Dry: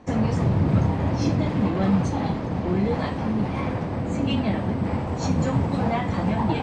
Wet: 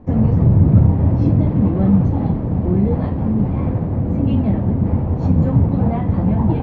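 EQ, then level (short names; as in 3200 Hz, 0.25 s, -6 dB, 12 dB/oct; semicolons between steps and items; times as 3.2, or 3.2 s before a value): LPF 3900 Hz 12 dB/oct; tilt shelf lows +9 dB, about 1100 Hz; low shelf 120 Hz +9.5 dB; -4.0 dB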